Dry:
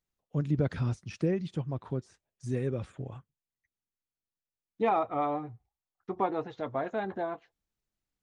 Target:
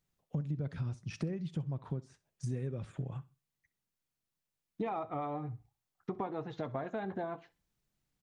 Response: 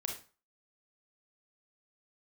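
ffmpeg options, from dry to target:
-filter_complex "[0:a]equalizer=frequency=150:width_type=o:width=0.74:gain=8,acompressor=threshold=-39dB:ratio=6,aecho=1:1:64|128:0.1|0.026,asplit=2[link_01][link_02];[1:a]atrim=start_sample=2205[link_03];[link_02][link_03]afir=irnorm=-1:irlink=0,volume=-20.5dB[link_04];[link_01][link_04]amix=inputs=2:normalize=0,volume=3.5dB"

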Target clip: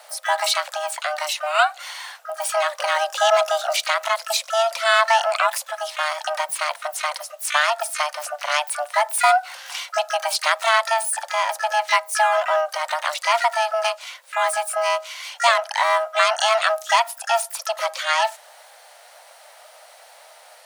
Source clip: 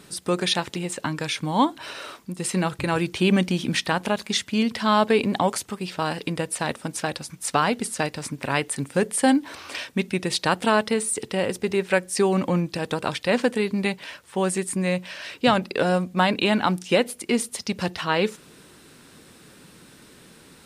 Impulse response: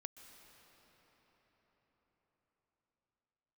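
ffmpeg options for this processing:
-filter_complex "[0:a]afreqshift=450,asplit=2[link_01][link_02];[link_02]asetrate=88200,aresample=44100,atempo=0.5,volume=-7dB[link_03];[link_01][link_03]amix=inputs=2:normalize=0,volume=1.5dB"

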